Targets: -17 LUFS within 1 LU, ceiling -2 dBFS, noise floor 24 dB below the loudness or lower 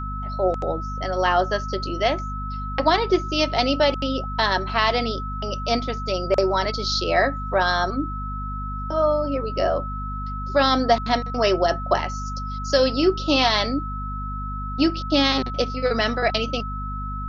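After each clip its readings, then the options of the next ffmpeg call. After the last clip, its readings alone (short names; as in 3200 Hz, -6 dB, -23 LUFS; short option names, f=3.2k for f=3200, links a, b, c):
hum 50 Hz; harmonics up to 250 Hz; hum level -28 dBFS; steady tone 1300 Hz; tone level -31 dBFS; loudness -22.5 LUFS; peak -5.0 dBFS; loudness target -17.0 LUFS
-> -af "bandreject=f=50:t=h:w=6,bandreject=f=100:t=h:w=6,bandreject=f=150:t=h:w=6,bandreject=f=200:t=h:w=6,bandreject=f=250:t=h:w=6"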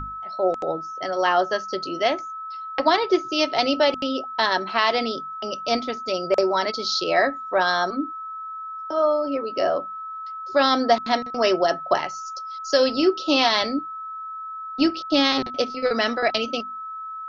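hum none; steady tone 1300 Hz; tone level -31 dBFS
-> -af "bandreject=f=1.3k:w=30"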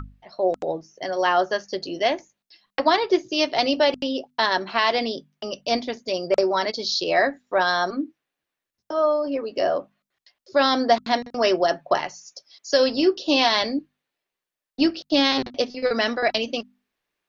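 steady tone none; loudness -23.0 LUFS; peak -5.5 dBFS; loudness target -17.0 LUFS
-> -af "volume=6dB,alimiter=limit=-2dB:level=0:latency=1"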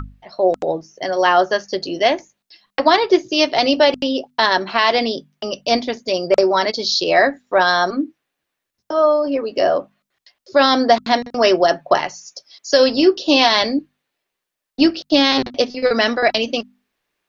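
loudness -17.0 LUFS; peak -2.0 dBFS; noise floor -81 dBFS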